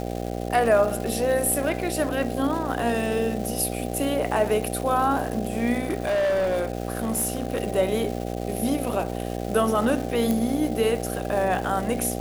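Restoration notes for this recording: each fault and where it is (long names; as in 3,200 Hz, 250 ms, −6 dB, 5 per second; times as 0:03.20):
mains buzz 60 Hz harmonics 13 −30 dBFS
surface crackle 590 per second −32 dBFS
0:05.80–0:07.60: clipping −20 dBFS
0:10.31: click −12 dBFS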